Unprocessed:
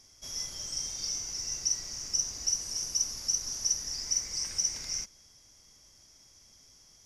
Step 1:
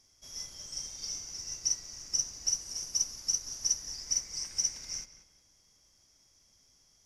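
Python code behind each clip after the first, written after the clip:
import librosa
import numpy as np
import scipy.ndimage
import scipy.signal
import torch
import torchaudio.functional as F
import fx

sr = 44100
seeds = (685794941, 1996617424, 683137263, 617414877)

y = fx.echo_filtered(x, sr, ms=184, feedback_pct=35, hz=3400.0, wet_db=-9.5)
y = fx.upward_expand(y, sr, threshold_db=-40.0, expansion=1.5)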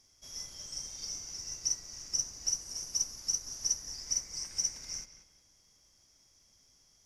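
y = fx.dynamic_eq(x, sr, hz=3400.0, q=0.9, threshold_db=-43.0, ratio=4.0, max_db=-4)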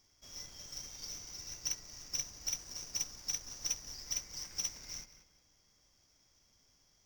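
y = scipy.signal.medfilt(x, 5)
y = y * 10.0 ** (-1.5 / 20.0)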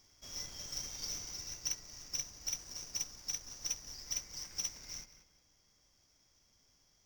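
y = fx.rider(x, sr, range_db=4, speed_s=0.5)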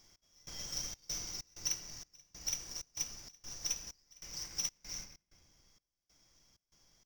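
y = fx.room_shoebox(x, sr, seeds[0], volume_m3=1200.0, walls='mixed', distance_m=0.73)
y = fx.step_gate(y, sr, bpm=96, pattern='x..xxx.xx.xx', floor_db=-24.0, edge_ms=4.5)
y = y * 10.0 ** (1.5 / 20.0)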